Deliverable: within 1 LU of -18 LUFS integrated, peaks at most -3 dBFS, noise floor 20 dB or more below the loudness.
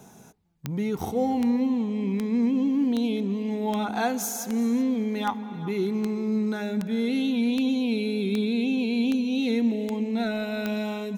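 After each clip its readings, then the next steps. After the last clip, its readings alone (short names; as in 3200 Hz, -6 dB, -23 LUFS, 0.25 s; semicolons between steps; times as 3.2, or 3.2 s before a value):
clicks 14; loudness -26.0 LUFS; peak -11.0 dBFS; loudness target -18.0 LUFS
-> de-click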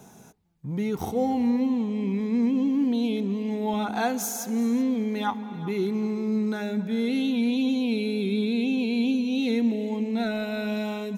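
clicks 0; loudness -26.0 LUFS; peak -14.0 dBFS; loudness target -18.0 LUFS
-> gain +8 dB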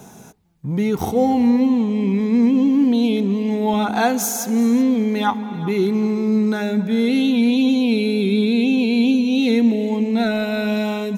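loudness -18.0 LUFS; peak -6.0 dBFS; noise floor -42 dBFS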